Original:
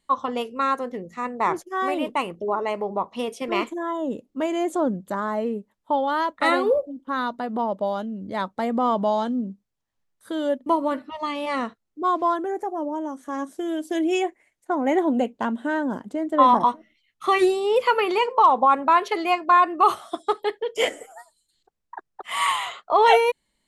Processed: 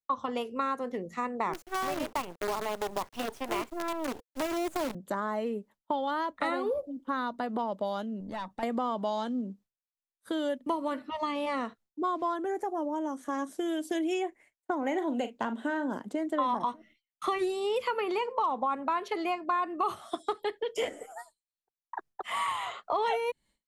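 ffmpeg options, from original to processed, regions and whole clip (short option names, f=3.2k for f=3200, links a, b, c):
-filter_complex "[0:a]asettb=1/sr,asplit=3[a][b][c];[a]atrim=end=1.534[d];[b]atrim=start=1.53:end=4.95,asetpts=PTS-STARTPTS,afade=t=in:d=0.004:c=qsin,afade=t=out:st=3.416:d=0.004:c=qsin,highpass=230,acrusher=bits=5:dc=4:mix=0:aa=0.000001,bandreject=f=480:w=9.4[e];[c]atrim=start=4.946[f];[d][e]acrossfade=d=0.004:c1=hsin:c2=qsin[g];[g][f]acrossfade=d=0.004:c1=qsin:c2=hsin,asettb=1/sr,asplit=3[h][i][j];[h]atrim=end=8.204[k];[i]atrim=start=8.2:end=8.63,asetpts=PTS-STARTPTS,afade=t=in:d=0.004:c=qsin,afade=t=out:st=0.426:d=0.004:c=qsin,aecho=1:1:1.1:0.52,atrim=end_sample=18963,acompressor=threshold=-33dB:ratio=2.5:attack=3.2:release=140:knee=1:detection=peak,aeval=exprs='(tanh(25.1*val(0)+0.4)-tanh(0.4))/25.1':c=same[l];[j]atrim=start=8.626[m];[k][l]acrossfade=d=0.004:c1=hsin:c2=qsin[n];[n][m]acrossfade=d=0.004:c1=qsin:c2=hsin,asettb=1/sr,asplit=3[o][p][q];[o]atrim=end=14.784[r];[p]atrim=start=14.78:end=15.92,asetpts=PTS-STARTPTS,afade=t=in:d=0.004:c=qsin,afade=t=out:st=1.136:d=0.004:c=qsin,equalizer=f=10k:t=o:w=0.26:g=-6.5,asplit=2[s][t];[t]adelay=41,volume=-12dB[u];[s][u]amix=inputs=2:normalize=0,atrim=end_sample=50274[v];[q]atrim=start=15.916[w];[r][v]acrossfade=d=0.004:c1=hsin:c2=qsin[x];[x][w]acrossfade=d=0.004:c1=qsin:c2=hsin,agate=range=-33dB:threshold=-46dB:ratio=3:detection=peak,acrossover=split=230|1500[y][z][aa];[y]acompressor=threshold=-45dB:ratio=4[ab];[z]acompressor=threshold=-31dB:ratio=4[ac];[aa]acompressor=threshold=-41dB:ratio=4[ad];[ab][ac][ad]amix=inputs=3:normalize=0"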